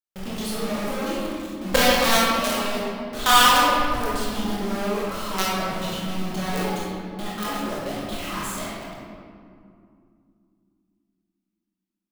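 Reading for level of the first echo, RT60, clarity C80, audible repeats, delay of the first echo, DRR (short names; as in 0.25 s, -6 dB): none, 2.5 s, -0.5 dB, none, none, -7.5 dB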